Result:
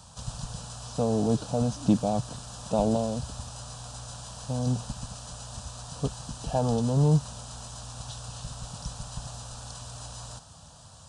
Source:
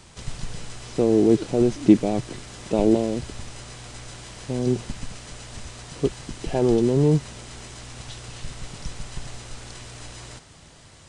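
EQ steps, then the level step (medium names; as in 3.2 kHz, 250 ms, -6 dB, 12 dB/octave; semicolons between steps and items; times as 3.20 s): high-pass 51 Hz; static phaser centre 870 Hz, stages 4; +1.5 dB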